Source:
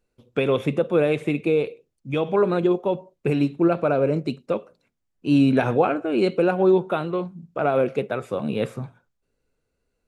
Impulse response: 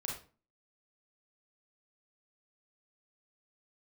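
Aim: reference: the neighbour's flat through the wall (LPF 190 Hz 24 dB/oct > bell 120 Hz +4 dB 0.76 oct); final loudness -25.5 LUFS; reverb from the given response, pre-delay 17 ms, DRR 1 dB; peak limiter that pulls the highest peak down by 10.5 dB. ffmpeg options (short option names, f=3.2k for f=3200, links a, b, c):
-filter_complex "[0:a]alimiter=limit=-17.5dB:level=0:latency=1,asplit=2[a][b];[1:a]atrim=start_sample=2205,adelay=17[c];[b][c]afir=irnorm=-1:irlink=0,volume=-2dB[d];[a][d]amix=inputs=2:normalize=0,lowpass=f=190:w=0.5412,lowpass=f=190:w=1.3066,equalizer=f=120:t=o:w=0.76:g=4,volume=6dB"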